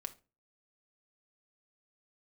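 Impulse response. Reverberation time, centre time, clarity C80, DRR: 0.30 s, 4 ms, 24.0 dB, 6.5 dB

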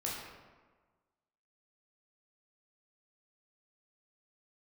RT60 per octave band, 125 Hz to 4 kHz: 1.4 s, 1.4 s, 1.4 s, 1.4 s, 1.1 s, 0.80 s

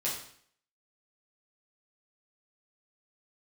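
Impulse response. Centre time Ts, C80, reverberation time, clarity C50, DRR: 37 ms, 8.0 dB, 0.60 s, 4.5 dB, -6.5 dB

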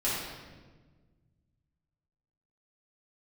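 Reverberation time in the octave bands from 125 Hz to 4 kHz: 2.6 s, 2.1 s, 1.6 s, 1.2 s, 1.1 s, 1.0 s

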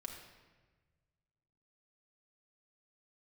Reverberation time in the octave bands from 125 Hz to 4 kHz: 2.4 s, 1.6 s, 1.5 s, 1.2 s, 1.3 s, 1.0 s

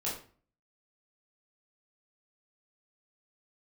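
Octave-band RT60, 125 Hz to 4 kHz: 0.60 s, 0.55 s, 0.45 s, 0.40 s, 0.40 s, 0.30 s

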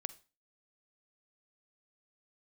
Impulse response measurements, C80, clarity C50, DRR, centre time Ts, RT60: 22.5 dB, 17.0 dB, 15.0 dB, 3 ms, 0.30 s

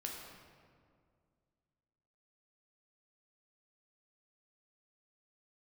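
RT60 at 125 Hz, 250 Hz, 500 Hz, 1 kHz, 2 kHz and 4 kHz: 2.7 s, 2.5 s, 2.3 s, 2.0 s, 1.5 s, 1.2 s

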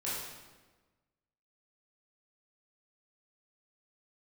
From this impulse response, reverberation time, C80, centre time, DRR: 1.3 s, 2.0 dB, 84 ms, -9.0 dB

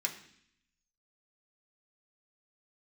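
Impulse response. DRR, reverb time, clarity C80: 0.0 dB, 0.65 s, 13.5 dB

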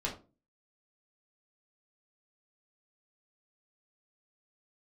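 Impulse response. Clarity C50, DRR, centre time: 10.0 dB, -3.5 dB, 20 ms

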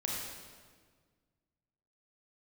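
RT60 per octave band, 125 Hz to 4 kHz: 2.2 s, 2.0 s, 1.7 s, 1.5 s, 1.4 s, 1.3 s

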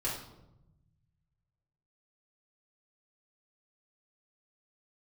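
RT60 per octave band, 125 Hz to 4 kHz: 2.3 s, 1.5 s, 1.0 s, 0.80 s, 0.60 s, 0.55 s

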